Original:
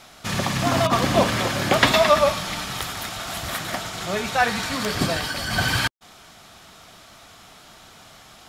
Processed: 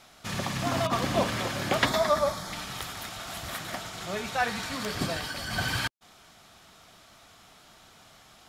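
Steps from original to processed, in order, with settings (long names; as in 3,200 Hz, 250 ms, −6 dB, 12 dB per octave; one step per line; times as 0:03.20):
0:01.85–0:02.53: parametric band 2,700 Hz −14.5 dB 0.41 octaves
level −7.5 dB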